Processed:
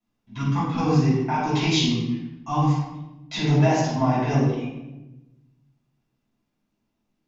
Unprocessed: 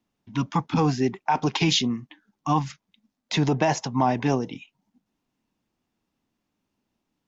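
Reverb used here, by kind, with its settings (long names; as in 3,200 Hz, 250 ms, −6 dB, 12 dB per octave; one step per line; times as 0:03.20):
rectangular room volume 420 cubic metres, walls mixed, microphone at 6.7 metres
level −14 dB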